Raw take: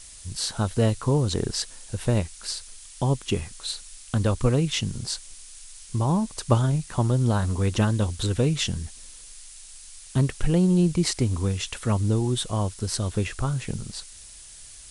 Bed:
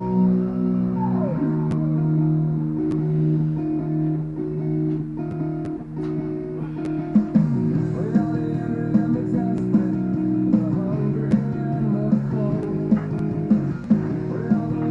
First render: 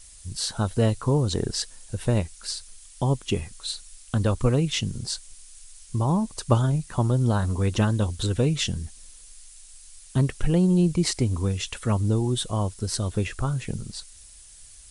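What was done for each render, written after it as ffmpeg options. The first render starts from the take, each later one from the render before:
ffmpeg -i in.wav -af "afftdn=noise_reduction=6:noise_floor=-45" out.wav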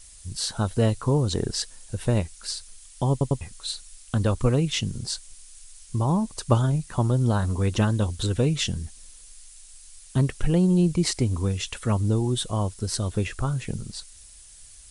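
ffmpeg -i in.wav -filter_complex "[0:a]asplit=4[link_01][link_02][link_03][link_04];[link_01]atrim=end=3.212[link_05];[link_02]atrim=start=3.108:end=3.212[link_06];[link_03]atrim=start=3.108:end=3.212[link_07];[link_04]atrim=start=3.408[link_08];[link_05][link_06]acrossfade=duration=0.004:curve1=hsin:curve2=hsin[link_09];[link_09][link_07]acrossfade=duration=0.004:curve1=hsin:curve2=hsin[link_10];[link_10][link_08]acrossfade=duration=0.004:curve1=hsin:curve2=hsin" out.wav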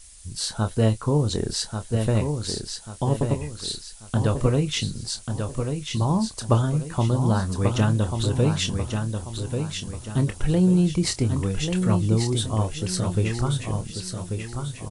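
ffmpeg -i in.wav -filter_complex "[0:a]asplit=2[link_01][link_02];[link_02]adelay=27,volume=-10.5dB[link_03];[link_01][link_03]amix=inputs=2:normalize=0,aecho=1:1:1139|2278|3417|4556|5695:0.501|0.19|0.0724|0.0275|0.0105" out.wav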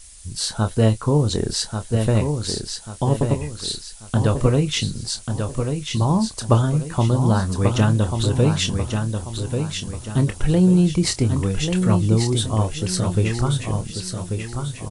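ffmpeg -i in.wav -af "volume=3.5dB" out.wav

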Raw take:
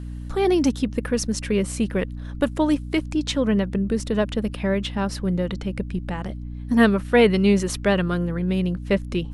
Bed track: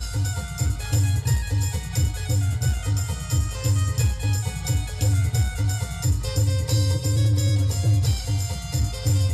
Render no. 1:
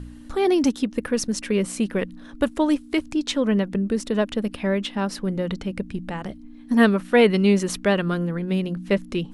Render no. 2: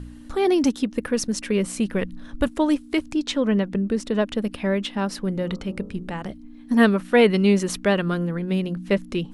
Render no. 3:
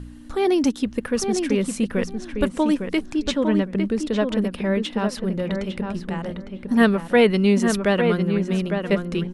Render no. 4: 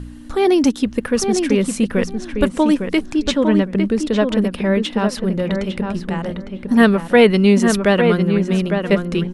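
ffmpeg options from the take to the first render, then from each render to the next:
ffmpeg -i in.wav -af "bandreject=frequency=60:width_type=h:width=4,bandreject=frequency=120:width_type=h:width=4,bandreject=frequency=180:width_type=h:width=4" out.wav
ffmpeg -i in.wav -filter_complex "[0:a]asettb=1/sr,asplit=3[link_01][link_02][link_03];[link_01]atrim=end=1.464[link_04];[link_02]atrim=start=1.46:end=2.47,asetpts=PTS-STARTPTS,afade=type=in:duration=0.004:curve=qsin,afade=type=out:start_time=1.006:duration=0.004:curve=qsin,asubboost=boost=6.5:cutoff=190[link_05];[link_03]atrim=start=2.466[link_06];[link_04][link_05]acrossfade=duration=0.004:curve1=hsin:curve2=qsin[link_07];[link_07][link_06]acrossfade=duration=0.004:curve1=qsin:curve2=hsin,asettb=1/sr,asplit=3[link_08][link_09][link_10];[link_08]atrim=end=3.224[link_11];[link_09]atrim=start=3.22:end=4.32,asetpts=PTS-STARTPTS,afade=type=in:duration=0.004:curve=qsin,afade=type=out:start_time=1.096:duration=0.004:curve=qsin,highshelf=frequency=10000:gain=-9.5[link_12];[link_10]atrim=start=4.316[link_13];[link_11][link_12]acrossfade=duration=0.004:curve1=hsin:curve2=qsin[link_14];[link_14][link_13]acrossfade=duration=0.004:curve1=qsin:curve2=hsin,asettb=1/sr,asplit=3[link_15][link_16][link_17];[link_15]atrim=end=5.394[link_18];[link_16]atrim=start=5.39:end=6.13,asetpts=PTS-STARTPTS,afade=type=in:duration=0.004:curve=qsin,afade=type=out:start_time=0.736:duration=0.004:curve=qsin,bandreject=frequency=52.17:width_type=h:width=4,bandreject=frequency=104.34:width_type=h:width=4,bandreject=frequency=156.51:width_type=h:width=4,bandreject=frequency=208.68:width_type=h:width=4,bandreject=frequency=260.85:width_type=h:width=4,bandreject=frequency=313.02:width_type=h:width=4,bandreject=frequency=365.19:width_type=h:width=4,bandreject=frequency=417.36:width_type=h:width=4,bandreject=frequency=469.53:width_type=h:width=4,bandreject=frequency=521.7:width_type=h:width=4,bandreject=frequency=573.87:width_type=h:width=4,bandreject=frequency=626.04:width_type=h:width=4,bandreject=frequency=678.21:width_type=h:width=4,bandreject=frequency=730.38:width_type=h:width=4,bandreject=frequency=782.55:width_type=h:width=4,bandreject=frequency=834.72:width_type=h:width=4,bandreject=frequency=886.89:width_type=h:width=4,bandreject=frequency=939.06:width_type=h:width=4,bandreject=frequency=991.23:width_type=h:width=4,bandreject=frequency=1043.4:width_type=h:width=4,bandreject=frequency=1095.57:width_type=h:width=4,bandreject=frequency=1147.74:width_type=h:width=4,bandreject=frequency=1199.91:width_type=h:width=4,bandreject=frequency=1252.08:width_type=h:width=4,bandreject=frequency=1304.25:width_type=h:width=4,bandreject=frequency=1356.42:width_type=h:width=4[link_19];[link_17]atrim=start=6.126[link_20];[link_18][link_19]acrossfade=duration=0.004:curve1=hsin:curve2=qsin[link_21];[link_21][link_20]acrossfade=duration=0.004:curve1=qsin:curve2=hsin" out.wav
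ffmpeg -i in.wav -filter_complex "[0:a]asplit=2[link_01][link_02];[link_02]adelay=855,lowpass=frequency=2500:poles=1,volume=-5.5dB,asplit=2[link_03][link_04];[link_04]adelay=855,lowpass=frequency=2500:poles=1,volume=0.17,asplit=2[link_05][link_06];[link_06]adelay=855,lowpass=frequency=2500:poles=1,volume=0.17[link_07];[link_01][link_03][link_05][link_07]amix=inputs=4:normalize=0" out.wav
ffmpeg -i in.wav -af "volume=5dB,alimiter=limit=-1dB:level=0:latency=1" out.wav

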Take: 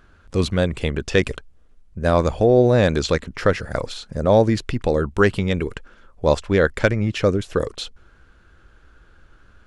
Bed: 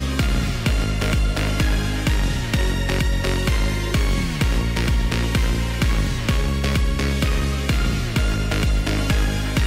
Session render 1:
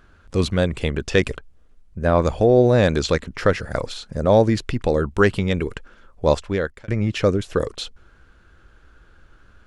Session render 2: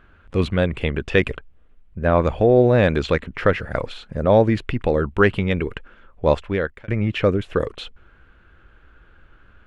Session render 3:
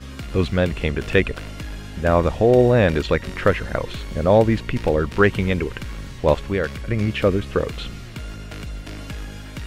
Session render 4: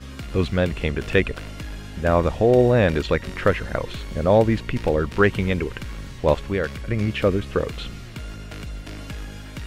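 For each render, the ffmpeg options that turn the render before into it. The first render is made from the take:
ffmpeg -i in.wav -filter_complex "[0:a]asettb=1/sr,asplit=3[link_01][link_02][link_03];[link_01]atrim=end=1.304[link_04];[link_02]atrim=start=1.3:end=2.22,asetpts=PTS-STARTPTS,afade=type=in:duration=0.004:curve=qsin,afade=type=out:start_time=0.916:duration=0.004:curve=qsin,acrossover=split=2900[link_05][link_06];[link_06]acompressor=threshold=-48dB:ratio=4:attack=1:release=60[link_07];[link_05][link_07]amix=inputs=2:normalize=0[link_08];[link_03]atrim=start=2.216[link_09];[link_04][link_08]acrossfade=duration=0.004:curve1=hsin:curve2=qsin[link_10];[link_10][link_09]acrossfade=duration=0.004:curve1=qsin:curve2=hsin,asplit=2[link_11][link_12];[link_11]atrim=end=6.88,asetpts=PTS-STARTPTS,afade=type=out:start_time=6.3:duration=0.58[link_13];[link_12]atrim=start=6.88,asetpts=PTS-STARTPTS,afade=type=in:duration=0.004:curve=hsin[link_14];[link_13][link_14]concat=n=2:v=0:a=1" out.wav
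ffmpeg -i in.wav -af "highshelf=frequency=3900:width_type=q:width=1.5:gain=-11" out.wav
ffmpeg -i in.wav -i bed.wav -filter_complex "[1:a]volume=-13dB[link_01];[0:a][link_01]amix=inputs=2:normalize=0" out.wav
ffmpeg -i in.wav -af "volume=-1.5dB" out.wav

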